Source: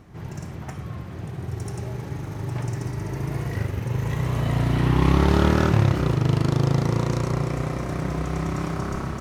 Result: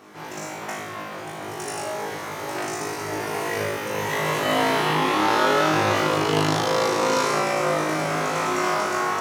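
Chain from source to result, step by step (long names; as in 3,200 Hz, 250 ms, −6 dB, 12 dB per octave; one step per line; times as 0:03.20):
high-pass filter 480 Hz 12 dB per octave
in parallel at −1 dB: compressor whose output falls as the input rises −32 dBFS, ratio −0.5
on the sum: flutter between parallel walls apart 3.3 metres, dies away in 0.75 s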